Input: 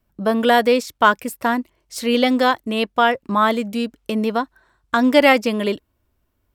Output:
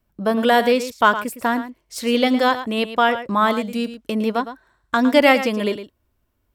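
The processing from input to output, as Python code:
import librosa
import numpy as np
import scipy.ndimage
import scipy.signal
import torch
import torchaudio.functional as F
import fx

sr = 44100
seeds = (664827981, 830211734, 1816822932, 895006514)

y = x + 10.0 ** (-12.0 / 20.0) * np.pad(x, (int(110 * sr / 1000.0), 0))[:len(x)]
y = y * 10.0 ** (-1.0 / 20.0)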